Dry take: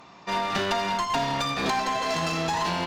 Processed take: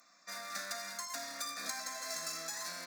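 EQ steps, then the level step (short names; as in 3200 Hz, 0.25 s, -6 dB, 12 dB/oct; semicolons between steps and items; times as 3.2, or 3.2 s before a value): differentiator; bell 140 Hz +5.5 dB 2.9 oct; fixed phaser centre 600 Hz, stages 8; +2.0 dB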